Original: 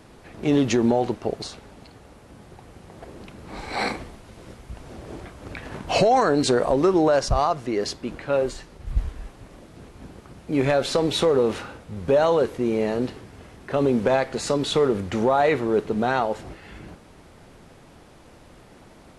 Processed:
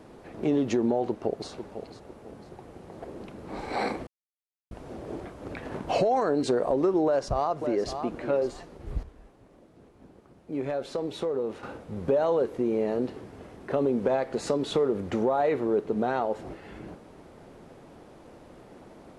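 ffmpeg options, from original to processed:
ffmpeg -i in.wav -filter_complex "[0:a]asplit=2[link_01][link_02];[link_02]afade=type=in:start_time=1.08:duration=0.01,afade=type=out:start_time=1.49:duration=0.01,aecho=0:1:500|1000|1500:0.199526|0.0698342|0.024442[link_03];[link_01][link_03]amix=inputs=2:normalize=0,asplit=2[link_04][link_05];[link_05]afade=type=in:start_time=7.05:duration=0.01,afade=type=out:start_time=8.03:duration=0.01,aecho=0:1:560|1120:0.237137|0.0355706[link_06];[link_04][link_06]amix=inputs=2:normalize=0,asplit=5[link_07][link_08][link_09][link_10][link_11];[link_07]atrim=end=4.07,asetpts=PTS-STARTPTS,afade=type=out:start_time=4.066:duration=0.004:curve=hsin[link_12];[link_08]atrim=start=4.07:end=4.71,asetpts=PTS-STARTPTS,volume=0[link_13];[link_09]atrim=start=4.71:end=9.032,asetpts=PTS-STARTPTS,afade=type=in:duration=0.004:curve=hsin[link_14];[link_10]atrim=start=9.028:end=11.632,asetpts=PTS-STARTPTS,volume=-10dB[link_15];[link_11]atrim=start=11.628[link_16];[link_12][link_13][link_14]concat=n=3:v=0:a=1[link_17];[link_17][link_15]acrossfade=duration=0.004:curve1=hsin:curve2=hsin[link_18];[link_18][link_16]acrossfade=duration=0.004:curve1=hsin:curve2=hsin,equalizer=frequency=420:width=0.39:gain=10,acompressor=threshold=-19dB:ratio=2,volume=-7.5dB" out.wav

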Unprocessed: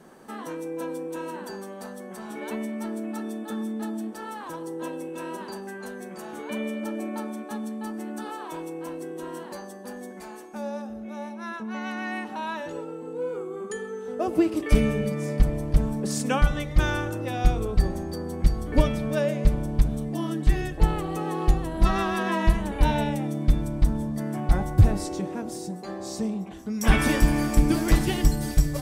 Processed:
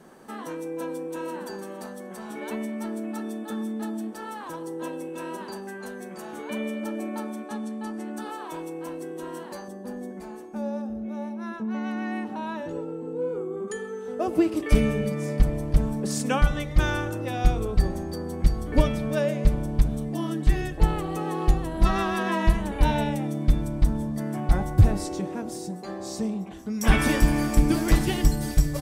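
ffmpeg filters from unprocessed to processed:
ffmpeg -i in.wav -filter_complex "[0:a]asplit=2[link_01][link_02];[link_02]afade=type=in:start_time=0.75:duration=0.01,afade=type=out:start_time=1.4:duration=0.01,aecho=0:1:460|920|1380:0.237137|0.0711412|0.0213424[link_03];[link_01][link_03]amix=inputs=2:normalize=0,asettb=1/sr,asplit=3[link_04][link_05][link_06];[link_04]atrim=end=7.474[link_07];[link_05]atrim=start=7.47:end=8.17,asetpts=PTS-STARTPTS,afade=type=in:duration=0.004:curve=qsin,afade=type=out:start_time=0.696:duration=0.004:curve=qsin,lowpass=10000[link_08];[link_06]atrim=start=8.166[link_09];[link_07][link_08]acrossfade=duration=0.004:curve1=hsin:curve2=qsin[link_10];[link_10][link_09]acrossfade=duration=0.004:curve1=qsin:curve2=hsin,asettb=1/sr,asplit=3[link_11][link_12][link_13];[link_11]atrim=end=9.684[link_14];[link_12]atrim=start=9.68:end=13.68,asetpts=PTS-STARTPTS,afade=type=in:duration=0.004:curve=qsin,afade=type=out:start_time=3.996:duration=0.004:curve=qsin,tiltshelf=frequency=630:gain=6[link_15];[link_13]atrim=start=13.676[link_16];[link_14][link_15]acrossfade=duration=0.004:curve1=hsin:curve2=qsin[link_17];[link_17][link_16]acrossfade=duration=0.004:curve1=qsin:curve2=hsin" out.wav

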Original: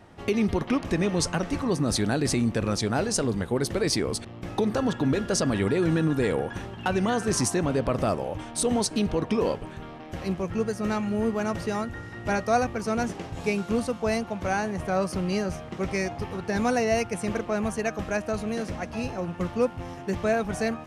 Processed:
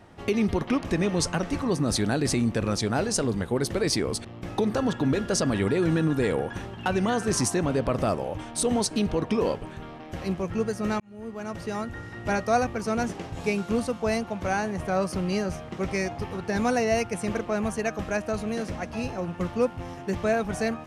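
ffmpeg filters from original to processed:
ffmpeg -i in.wav -filter_complex "[0:a]asplit=2[link_01][link_02];[link_01]atrim=end=11,asetpts=PTS-STARTPTS,afade=type=out:start_time=10.996:duration=0.004:curve=hsin[link_03];[link_02]atrim=start=11,asetpts=PTS-STARTPTS,afade=type=in:duration=1[link_04];[link_03][link_04]concat=n=2:v=0:a=1" out.wav

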